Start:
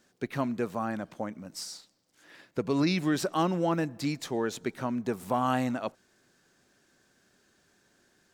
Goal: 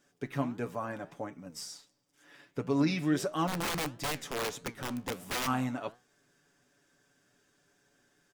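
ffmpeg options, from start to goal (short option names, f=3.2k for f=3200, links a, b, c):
-filter_complex "[0:a]bandreject=f=4.2k:w=7.4,aecho=1:1:7:0.62,asplit=3[a][b][c];[a]afade=t=out:st=3.47:d=0.02[d];[b]aeval=exprs='(mod(15*val(0)+1,2)-1)/15':c=same,afade=t=in:st=3.47:d=0.02,afade=t=out:st=5.46:d=0.02[e];[c]afade=t=in:st=5.46:d=0.02[f];[d][e][f]amix=inputs=3:normalize=0,flanger=delay=8:depth=7.1:regen=83:speed=1.5:shape=sinusoidal"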